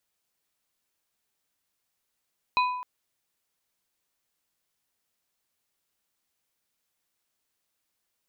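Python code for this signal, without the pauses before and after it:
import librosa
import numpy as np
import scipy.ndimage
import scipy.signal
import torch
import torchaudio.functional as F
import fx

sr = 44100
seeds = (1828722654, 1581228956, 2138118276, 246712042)

y = fx.strike_glass(sr, length_s=0.26, level_db=-19, body='plate', hz=997.0, decay_s=0.95, tilt_db=5, modes=3)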